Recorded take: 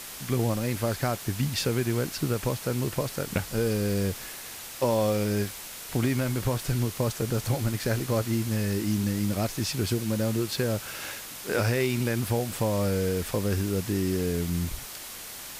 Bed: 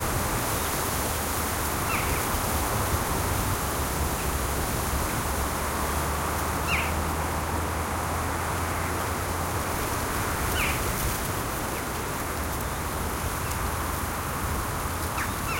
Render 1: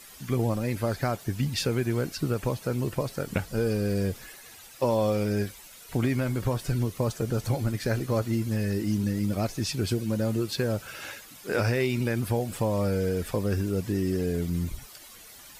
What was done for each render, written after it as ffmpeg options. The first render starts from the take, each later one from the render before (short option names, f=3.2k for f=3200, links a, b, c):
-af "afftdn=nr=12:nf=-41"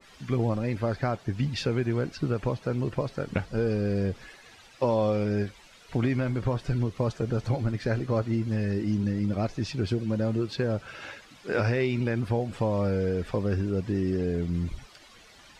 -af "lowpass=4.4k,adynamicequalizer=threshold=0.00794:dfrequency=1800:dqfactor=0.7:tfrequency=1800:tqfactor=0.7:attack=5:release=100:ratio=0.375:range=1.5:mode=cutabove:tftype=highshelf"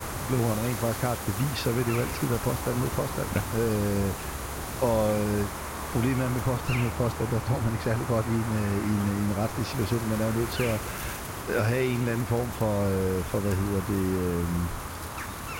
-filter_complex "[1:a]volume=-7dB[a];[0:a][a]amix=inputs=2:normalize=0"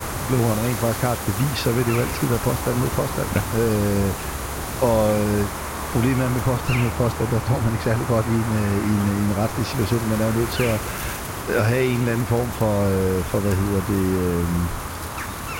-af "volume=6dB"